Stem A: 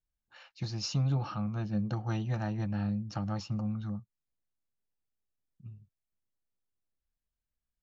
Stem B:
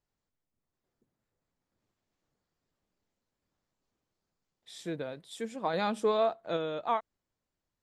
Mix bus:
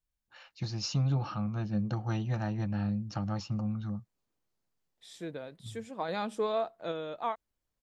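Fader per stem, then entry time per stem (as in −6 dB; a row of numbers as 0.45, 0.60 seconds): +0.5, −3.5 decibels; 0.00, 0.35 seconds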